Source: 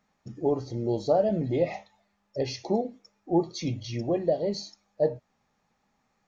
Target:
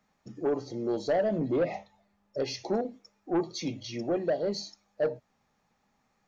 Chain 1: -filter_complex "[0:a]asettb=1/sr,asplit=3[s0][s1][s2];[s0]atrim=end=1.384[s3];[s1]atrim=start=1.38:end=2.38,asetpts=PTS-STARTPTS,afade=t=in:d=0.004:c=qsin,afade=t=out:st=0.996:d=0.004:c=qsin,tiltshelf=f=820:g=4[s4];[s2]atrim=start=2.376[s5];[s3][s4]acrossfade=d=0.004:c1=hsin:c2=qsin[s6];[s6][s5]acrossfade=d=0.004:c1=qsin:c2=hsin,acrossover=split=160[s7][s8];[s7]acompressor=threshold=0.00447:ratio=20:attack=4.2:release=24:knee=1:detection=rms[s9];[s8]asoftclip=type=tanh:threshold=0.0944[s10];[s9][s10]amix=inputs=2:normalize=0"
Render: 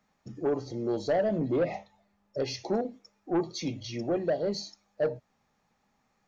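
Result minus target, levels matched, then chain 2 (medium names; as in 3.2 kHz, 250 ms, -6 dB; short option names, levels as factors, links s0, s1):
compression: peak gain reduction -9.5 dB
-filter_complex "[0:a]asettb=1/sr,asplit=3[s0][s1][s2];[s0]atrim=end=1.384[s3];[s1]atrim=start=1.38:end=2.38,asetpts=PTS-STARTPTS,afade=t=in:d=0.004:c=qsin,afade=t=out:st=0.996:d=0.004:c=qsin,tiltshelf=f=820:g=4[s4];[s2]atrim=start=2.376[s5];[s3][s4]acrossfade=d=0.004:c1=hsin:c2=qsin[s6];[s6][s5]acrossfade=d=0.004:c1=qsin:c2=hsin,acrossover=split=160[s7][s8];[s7]acompressor=threshold=0.00141:ratio=20:attack=4.2:release=24:knee=1:detection=rms[s9];[s8]asoftclip=type=tanh:threshold=0.0944[s10];[s9][s10]amix=inputs=2:normalize=0"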